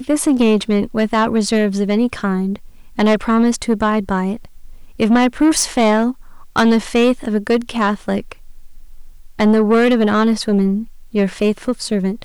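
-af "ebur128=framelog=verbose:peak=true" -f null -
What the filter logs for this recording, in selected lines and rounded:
Integrated loudness:
  I:         -16.4 LUFS
  Threshold: -27.0 LUFS
Loudness range:
  LRA:         2.2 LU
  Threshold: -37.1 LUFS
  LRA low:   -18.2 LUFS
  LRA high:  -16.0 LUFS
True peak:
  Peak:       -5.1 dBFS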